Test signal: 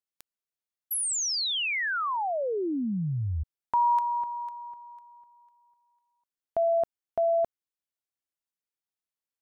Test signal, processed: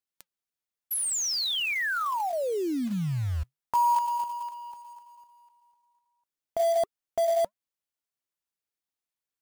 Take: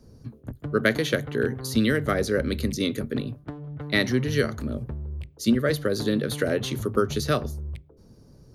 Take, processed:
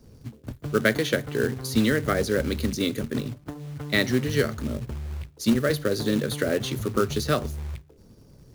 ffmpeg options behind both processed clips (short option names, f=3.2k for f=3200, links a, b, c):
-af "flanger=delay=0.6:depth=3.5:regen=-83:speed=1.3:shape=triangular,acrusher=bits=4:mode=log:mix=0:aa=0.000001,volume=4.5dB"